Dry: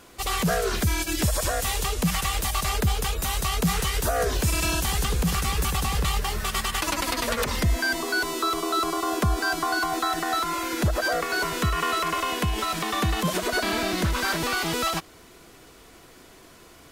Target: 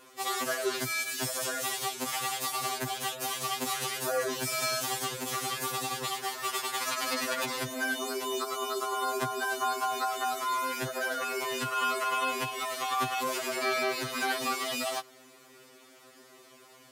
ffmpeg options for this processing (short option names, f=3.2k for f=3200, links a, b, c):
-af "highpass=240,afftfilt=real='re*2.45*eq(mod(b,6),0)':imag='im*2.45*eq(mod(b,6),0)':win_size=2048:overlap=0.75,volume=-2dB"